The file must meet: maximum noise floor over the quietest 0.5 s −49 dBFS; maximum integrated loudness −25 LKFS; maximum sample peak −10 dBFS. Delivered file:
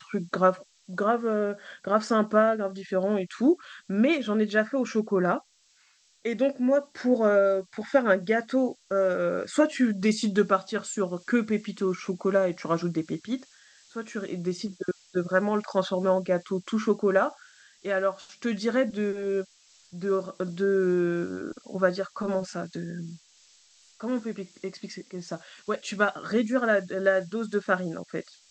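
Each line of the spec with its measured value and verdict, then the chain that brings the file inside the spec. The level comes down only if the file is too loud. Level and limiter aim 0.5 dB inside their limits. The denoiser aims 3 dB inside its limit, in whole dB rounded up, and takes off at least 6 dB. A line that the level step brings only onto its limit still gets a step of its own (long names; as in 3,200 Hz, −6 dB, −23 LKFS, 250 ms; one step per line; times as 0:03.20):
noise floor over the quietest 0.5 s −64 dBFS: in spec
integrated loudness −27.0 LKFS: in spec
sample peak −7.5 dBFS: out of spec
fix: brickwall limiter −10.5 dBFS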